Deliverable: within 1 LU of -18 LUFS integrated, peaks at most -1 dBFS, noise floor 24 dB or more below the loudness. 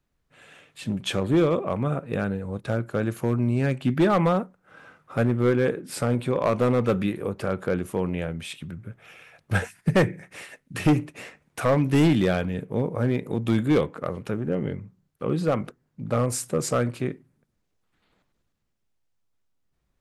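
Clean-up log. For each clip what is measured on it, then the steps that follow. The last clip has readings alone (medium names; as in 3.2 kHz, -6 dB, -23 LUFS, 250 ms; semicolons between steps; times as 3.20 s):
clipped samples 1.0%; clipping level -14.0 dBFS; loudness -25.0 LUFS; peak level -14.0 dBFS; loudness target -18.0 LUFS
-> clip repair -14 dBFS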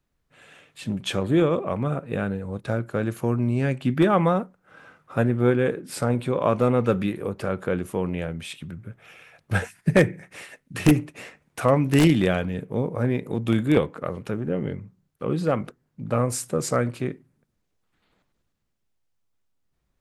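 clipped samples 0.0%; loudness -24.0 LUFS; peak level -5.0 dBFS; loudness target -18.0 LUFS
-> trim +6 dB; peak limiter -1 dBFS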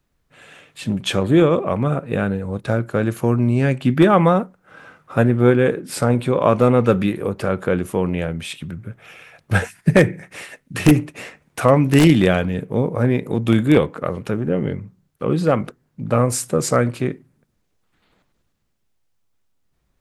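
loudness -18.5 LUFS; peak level -1.0 dBFS; noise floor -69 dBFS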